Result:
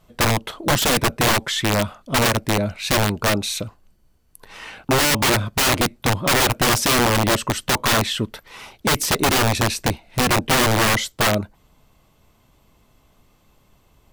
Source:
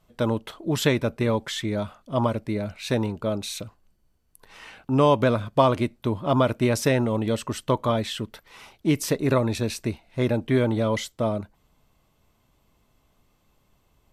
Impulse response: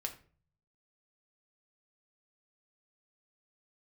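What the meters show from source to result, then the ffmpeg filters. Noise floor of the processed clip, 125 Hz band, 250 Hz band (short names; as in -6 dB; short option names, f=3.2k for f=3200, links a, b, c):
-59 dBFS, +3.0 dB, +1.0 dB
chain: -af "aeval=exprs='(mod(9.44*val(0)+1,2)-1)/9.44':c=same,volume=7.5dB"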